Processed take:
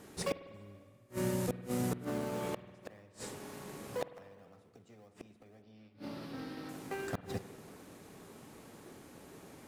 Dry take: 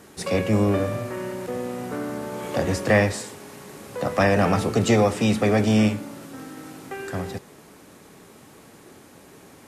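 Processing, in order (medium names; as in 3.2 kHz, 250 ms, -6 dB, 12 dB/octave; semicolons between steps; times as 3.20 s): 0.54–2.05 s: tone controls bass +8 dB, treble +11 dB; in parallel at -8.5 dB: decimation with a swept rate 20×, swing 60% 1.9 Hz; 5.62–6.69 s: on the sum: resonant high shelf 5.8 kHz -7.5 dB, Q 3; inverted gate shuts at -14 dBFS, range -35 dB; reverberation RT60 1.9 s, pre-delay 49 ms, DRR 13 dB; trim -7.5 dB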